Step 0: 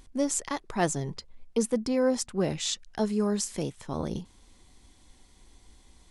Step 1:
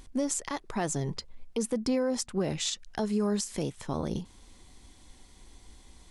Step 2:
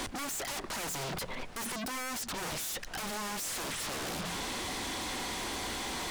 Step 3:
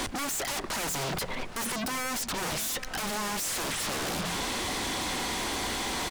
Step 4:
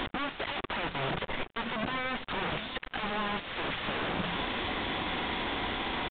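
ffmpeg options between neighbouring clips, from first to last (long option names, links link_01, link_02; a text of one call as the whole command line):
ffmpeg -i in.wav -af "alimiter=limit=-23dB:level=0:latency=1:release=167,volume=3dB" out.wav
ffmpeg -i in.wav -filter_complex "[0:a]asplit=2[link_01][link_02];[link_02]highpass=frequency=720:poles=1,volume=36dB,asoftclip=type=tanh:threshold=-19.5dB[link_03];[link_01][link_03]amix=inputs=2:normalize=0,lowpass=frequency=1700:poles=1,volume=-6dB,bandreject=frequency=58.28:width_type=h:width=4,bandreject=frequency=116.56:width_type=h:width=4,bandreject=frequency=174.84:width_type=h:width=4,aeval=exprs='0.0158*(abs(mod(val(0)/0.0158+3,4)-2)-1)':channel_layout=same,volume=4dB" out.wav
ffmpeg -i in.wav -filter_complex "[0:a]asplit=2[link_01][link_02];[link_02]adelay=816.3,volume=-13dB,highshelf=frequency=4000:gain=-18.4[link_03];[link_01][link_03]amix=inputs=2:normalize=0,volume=5dB" out.wav
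ffmpeg -i in.wav -af "acrusher=bits=4:mix=0:aa=0.5,aresample=8000,aresample=44100" out.wav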